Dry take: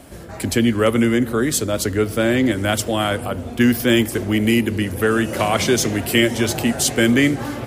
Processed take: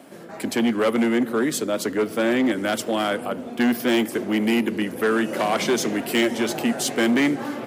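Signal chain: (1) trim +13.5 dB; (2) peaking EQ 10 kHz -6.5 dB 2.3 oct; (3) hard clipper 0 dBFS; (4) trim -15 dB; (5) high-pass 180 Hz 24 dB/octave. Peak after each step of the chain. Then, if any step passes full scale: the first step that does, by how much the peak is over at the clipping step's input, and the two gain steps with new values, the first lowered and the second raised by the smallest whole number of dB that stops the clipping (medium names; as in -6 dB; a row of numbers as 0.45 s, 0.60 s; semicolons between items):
+9.5 dBFS, +8.5 dBFS, 0.0 dBFS, -15.0 dBFS, -9.5 dBFS; step 1, 8.5 dB; step 1 +4.5 dB, step 4 -6 dB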